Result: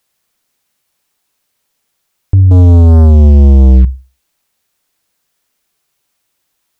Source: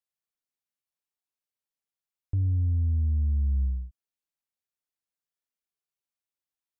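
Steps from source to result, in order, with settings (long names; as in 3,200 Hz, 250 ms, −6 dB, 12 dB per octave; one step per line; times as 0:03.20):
flutter between parallel walls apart 10.6 metres, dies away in 0.32 s
0:02.51–0:03.85: leveller curve on the samples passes 3
boost into a limiter +27 dB
level −1 dB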